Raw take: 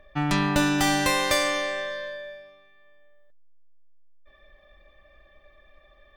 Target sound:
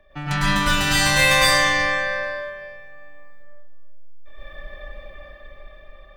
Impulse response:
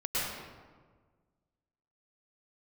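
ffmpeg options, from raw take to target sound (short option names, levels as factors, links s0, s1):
-filter_complex "[0:a]acrossover=split=190|1100[s0][s1][s2];[s1]acompressor=threshold=0.0158:ratio=6[s3];[s0][s3][s2]amix=inputs=3:normalize=0[s4];[1:a]atrim=start_sample=2205[s5];[s4][s5]afir=irnorm=-1:irlink=0,dynaudnorm=f=420:g=7:m=2.82"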